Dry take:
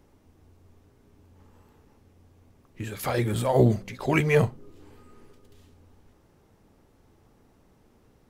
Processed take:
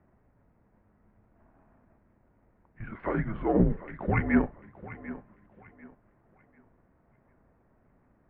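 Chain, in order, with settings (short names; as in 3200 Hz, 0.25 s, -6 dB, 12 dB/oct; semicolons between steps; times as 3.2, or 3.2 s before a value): half-wave gain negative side -3 dB; thinning echo 0.744 s, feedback 31%, high-pass 290 Hz, level -15 dB; mistuned SSB -200 Hz 210–2200 Hz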